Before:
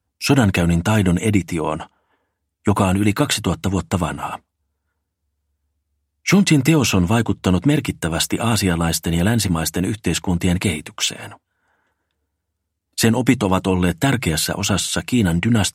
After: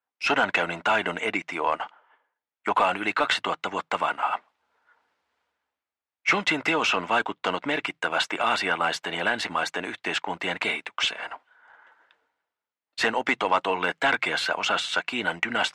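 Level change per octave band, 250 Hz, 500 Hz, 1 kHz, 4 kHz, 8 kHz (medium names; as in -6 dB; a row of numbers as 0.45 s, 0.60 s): -17.5 dB, -6.0 dB, +0.5 dB, -4.0 dB, -16.5 dB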